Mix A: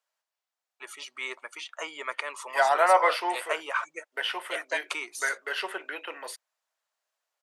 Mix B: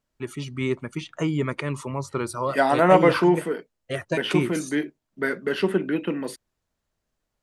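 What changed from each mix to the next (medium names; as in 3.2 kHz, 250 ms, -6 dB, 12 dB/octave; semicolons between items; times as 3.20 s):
first voice: entry -0.60 s; master: remove high-pass 650 Hz 24 dB/octave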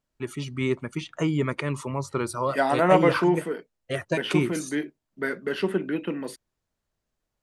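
second voice -3.0 dB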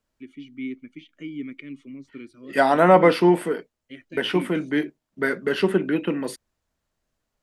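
first voice: add vowel filter i; second voice +5.0 dB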